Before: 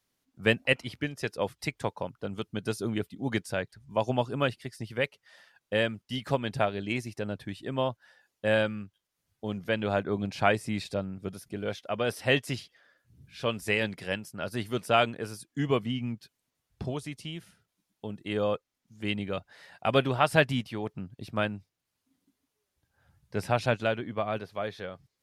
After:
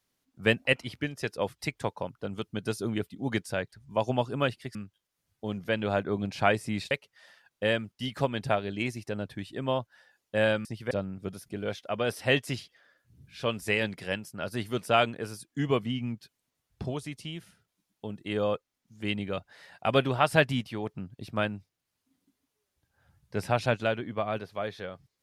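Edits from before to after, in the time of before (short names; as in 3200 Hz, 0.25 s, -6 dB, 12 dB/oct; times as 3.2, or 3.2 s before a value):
4.75–5.01 swap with 8.75–10.91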